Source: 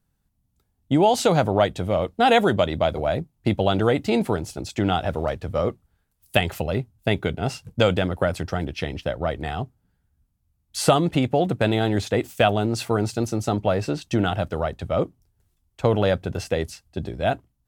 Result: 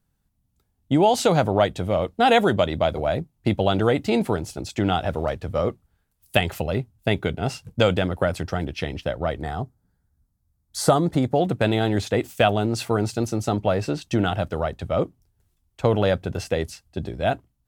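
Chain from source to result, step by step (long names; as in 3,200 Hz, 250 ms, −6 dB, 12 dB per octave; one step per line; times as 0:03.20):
0:09.41–0:11.36: parametric band 2,700 Hz −14.5 dB 0.52 octaves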